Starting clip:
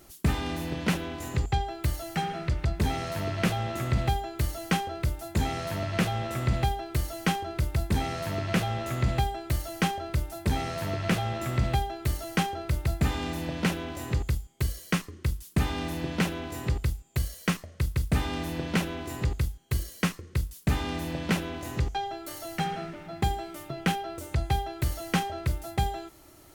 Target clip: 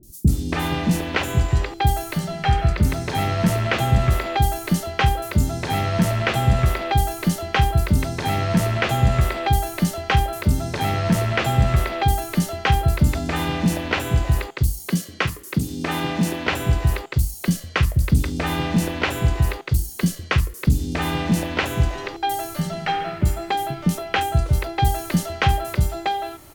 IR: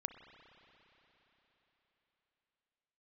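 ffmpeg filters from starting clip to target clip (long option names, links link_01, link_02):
-filter_complex "[0:a]asettb=1/sr,asplit=3[link_01][link_02][link_03];[link_01]atrim=end=14.894[link_04];[link_02]atrim=start=14.89:end=16.47,asetpts=PTS-STARTPTS,afade=type=in:duration=0.004:curve=qsin,afade=type=out:start_time=1.576:duration=0.004:curve=qsin,highpass=140[link_05];[link_03]atrim=start=16.466[link_06];[link_04][link_05]acrossfade=duration=0.004:curve1=hsin:curve2=qsin[link_07];[link_07][link_06]acrossfade=duration=0.004:curve1=qsin:curve2=hsin,acrossover=split=340|5000[link_08][link_09][link_10];[link_10]adelay=30[link_11];[link_09]adelay=280[link_12];[link_08][link_12][link_11]amix=inputs=3:normalize=0,volume=9dB"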